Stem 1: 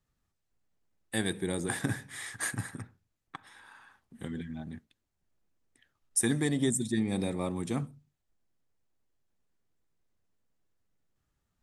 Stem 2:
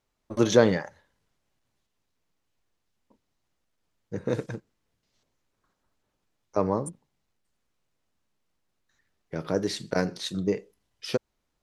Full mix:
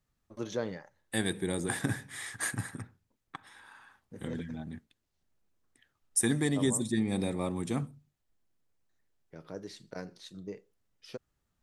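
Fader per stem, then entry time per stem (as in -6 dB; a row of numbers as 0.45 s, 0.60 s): 0.0 dB, -15.5 dB; 0.00 s, 0.00 s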